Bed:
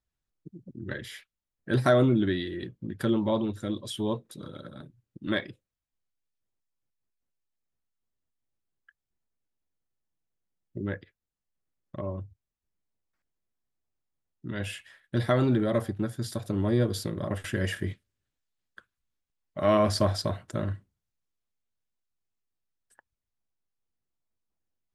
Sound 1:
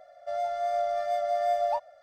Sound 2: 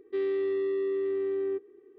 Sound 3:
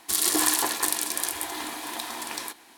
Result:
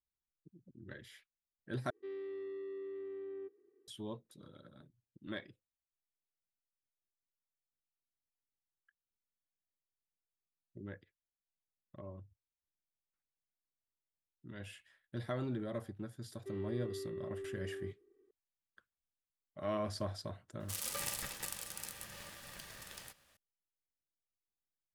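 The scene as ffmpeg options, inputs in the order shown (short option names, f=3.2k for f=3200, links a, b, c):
-filter_complex "[2:a]asplit=2[a][b];[0:a]volume=-14.5dB[c];[3:a]aeval=exprs='val(0)*sgn(sin(2*PI*880*n/s))':c=same[d];[c]asplit=2[e][f];[e]atrim=end=1.904[g];[a]atrim=end=1.98,asetpts=PTS-STARTPTS,volume=-15dB[h];[f]atrim=start=3.876[i];[b]atrim=end=1.98,asetpts=PTS-STARTPTS,volume=-15dB,afade=t=in:d=0.004:c=hsin,afade=t=out:st=1.976:d=0.004:c=hsin,adelay=16330[j];[d]atrim=end=2.77,asetpts=PTS-STARTPTS,volume=-17dB,afade=t=in:d=0.004:c=hsin,afade=t=out:st=2.766:d=0.004:c=hsin,adelay=20600[k];[g][h]acrossfade=d=0.004:c1=hsin:c2=hsin[l];[l][i]acrossfade=d=0.004:c1=hsin:c2=hsin[m];[m][j][k]amix=inputs=3:normalize=0"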